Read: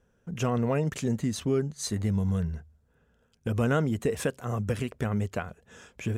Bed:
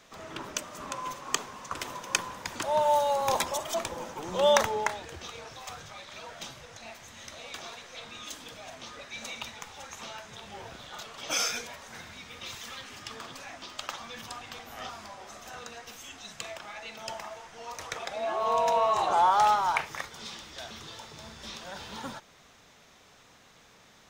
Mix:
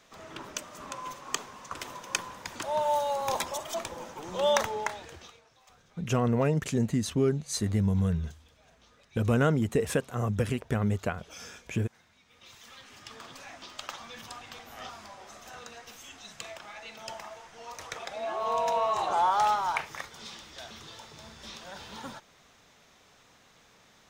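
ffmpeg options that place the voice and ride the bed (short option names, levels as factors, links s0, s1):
-filter_complex "[0:a]adelay=5700,volume=1.12[s0];[1:a]volume=4.22,afade=t=out:st=5.09:d=0.32:silence=0.177828,afade=t=in:st=12.25:d=1.2:silence=0.16788[s1];[s0][s1]amix=inputs=2:normalize=0"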